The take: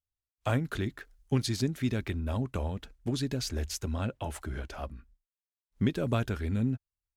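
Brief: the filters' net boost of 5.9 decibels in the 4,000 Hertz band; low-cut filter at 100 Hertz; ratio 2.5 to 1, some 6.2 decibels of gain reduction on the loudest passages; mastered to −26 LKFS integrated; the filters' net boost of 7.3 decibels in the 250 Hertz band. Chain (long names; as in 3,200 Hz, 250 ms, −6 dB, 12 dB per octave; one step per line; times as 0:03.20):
high-pass filter 100 Hz
parametric band 250 Hz +8.5 dB
parametric band 4,000 Hz +7 dB
downward compressor 2.5 to 1, threshold −26 dBFS
level +6 dB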